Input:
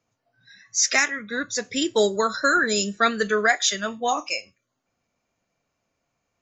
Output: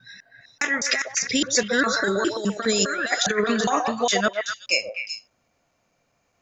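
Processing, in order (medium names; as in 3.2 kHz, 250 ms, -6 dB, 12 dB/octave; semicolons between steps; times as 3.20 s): slices played last to first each 204 ms, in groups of 3; compressor with a negative ratio -24 dBFS, ratio -0.5; repeats whose band climbs or falls 126 ms, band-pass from 680 Hz, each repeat 1.4 oct, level -1.5 dB; trim +3 dB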